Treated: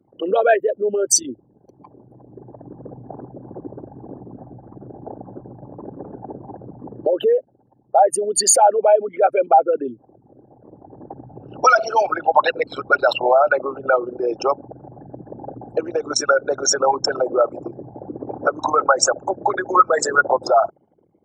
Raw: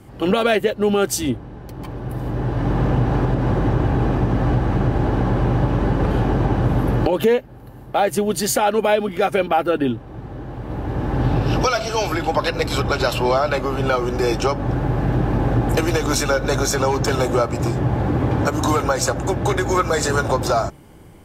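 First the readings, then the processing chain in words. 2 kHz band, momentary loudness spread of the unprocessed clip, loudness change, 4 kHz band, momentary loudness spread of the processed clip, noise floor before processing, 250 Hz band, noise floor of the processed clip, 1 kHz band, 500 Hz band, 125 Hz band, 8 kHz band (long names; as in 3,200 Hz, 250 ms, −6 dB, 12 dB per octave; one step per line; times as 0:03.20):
+1.5 dB, 6 LU, +2.0 dB, −0.5 dB, 21 LU, −39 dBFS, −11.0 dB, −59 dBFS, +3.5 dB, +1.0 dB, −22.5 dB, +6.0 dB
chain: spectral envelope exaggerated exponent 3
high-pass filter 750 Hz 12 dB per octave
level +8.5 dB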